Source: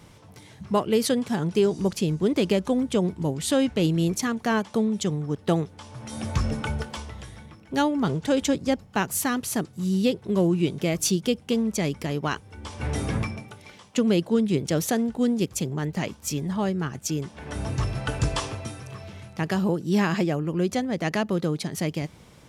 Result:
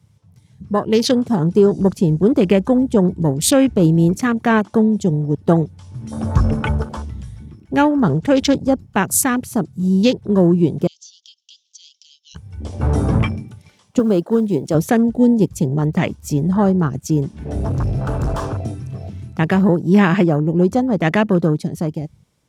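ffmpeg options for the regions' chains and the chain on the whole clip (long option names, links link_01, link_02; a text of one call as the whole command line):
ffmpeg -i in.wav -filter_complex "[0:a]asettb=1/sr,asplit=3[link_01][link_02][link_03];[link_01]atrim=end=10.874[link_04];[link_02]atrim=start=10.87:end=12.35,asetpts=PTS-STARTPTS,afade=type=in:duration=0.004:curve=qsin,afade=type=out:start_time=1.476:duration=0.004:curve=qsin,asuperpass=centerf=4500:order=12:qfactor=1.2,acompressor=threshold=-34dB:ratio=10:attack=3.2:release=140:knee=1:detection=peak[link_05];[link_03]atrim=start=12.346[link_06];[link_04][link_05]acrossfade=duration=0.004:curve1=hsin:curve2=qsin[link_07];[link_07][link_06]acrossfade=duration=0.004:curve1=qsin:curve2=hsin,asettb=1/sr,asplit=3[link_08][link_09][link_10];[link_08]atrim=end=13.994[link_11];[link_09]atrim=start=13.99:end=14.75,asetpts=PTS-STARTPTS,afade=type=in:duration=0.004:curve=qsin,afade=type=out:start_time=0.756:duration=0.004:curve=qsin,highpass=frequency=320:poles=1,acrusher=bits=7:mode=log:mix=0:aa=0.000001[link_12];[link_10]atrim=start=14.746[link_13];[link_11][link_12]acrossfade=duration=0.004:curve1=hsin:curve2=qsin[link_14];[link_14][link_13]acrossfade=duration=0.004:curve1=qsin:curve2=hsin,asettb=1/sr,asplit=3[link_15][link_16][link_17];[link_15]atrim=end=17.444[link_18];[link_16]atrim=start=17.44:end=19.01,asetpts=PTS-STARTPTS,afade=type=in:duration=0.004:curve=qsin,afade=type=out:start_time=1.566:duration=0.004:curve=qsin,highshelf=frequency=4400:gain=-3.5,asoftclip=type=hard:threshold=-28.5dB[link_19];[link_17]atrim=start=19.006[link_20];[link_18][link_19]acrossfade=duration=0.004:curve1=hsin:curve2=qsin[link_21];[link_21][link_20]acrossfade=duration=0.004:curve1=qsin:curve2=hsin,afwtdn=0.0178,bass=frequency=250:gain=2,treble=frequency=4000:gain=6,dynaudnorm=framelen=130:gausssize=13:maxgain=10.5dB" out.wav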